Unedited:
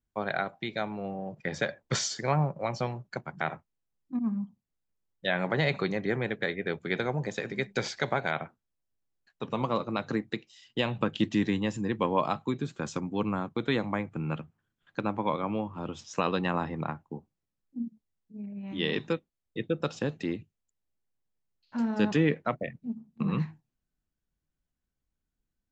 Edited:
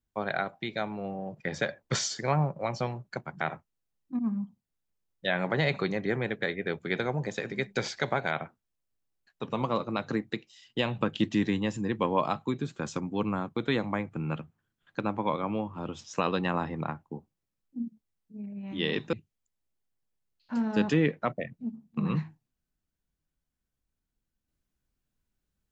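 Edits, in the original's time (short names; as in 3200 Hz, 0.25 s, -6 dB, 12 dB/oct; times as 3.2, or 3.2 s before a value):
19.13–20.36 cut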